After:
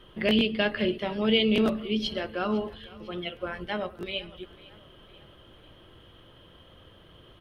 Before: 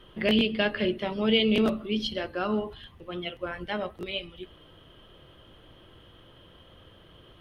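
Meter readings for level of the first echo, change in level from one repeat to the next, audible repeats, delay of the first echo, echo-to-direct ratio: -21.0 dB, -5.5 dB, 3, 0.502 s, -19.5 dB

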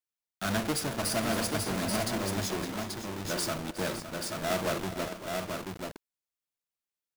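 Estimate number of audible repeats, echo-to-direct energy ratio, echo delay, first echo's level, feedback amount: 4, -3.0 dB, 0.364 s, -15.5 dB, no steady repeat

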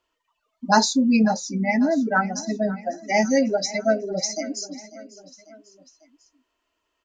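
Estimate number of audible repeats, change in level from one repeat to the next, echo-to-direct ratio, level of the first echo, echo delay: 3, -5.0 dB, -16.5 dB, -18.0 dB, 0.546 s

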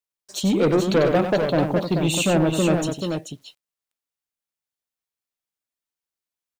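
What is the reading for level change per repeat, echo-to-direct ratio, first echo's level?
no steady repeat, -3.5 dB, -7.5 dB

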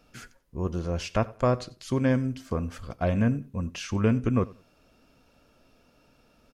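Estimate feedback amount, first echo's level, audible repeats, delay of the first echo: 22%, -21.5 dB, 2, 91 ms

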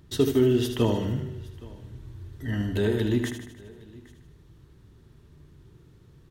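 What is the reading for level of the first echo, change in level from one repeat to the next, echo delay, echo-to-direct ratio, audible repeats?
-8.0 dB, no steady repeat, 77 ms, -6.5 dB, 8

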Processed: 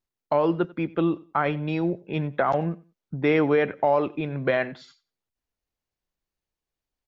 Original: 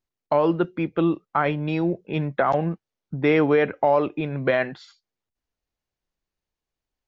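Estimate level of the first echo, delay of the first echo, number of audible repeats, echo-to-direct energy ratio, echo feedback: -21.5 dB, 92 ms, 2, -21.5 dB, 22%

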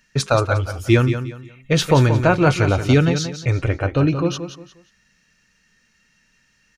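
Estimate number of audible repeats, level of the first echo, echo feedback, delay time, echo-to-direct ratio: 3, -9.5 dB, 29%, 0.178 s, -9.0 dB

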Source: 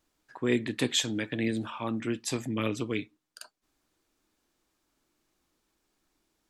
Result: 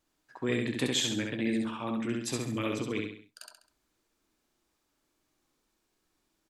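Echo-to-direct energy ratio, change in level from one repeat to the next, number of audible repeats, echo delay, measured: -2.0 dB, -7.5 dB, 4, 67 ms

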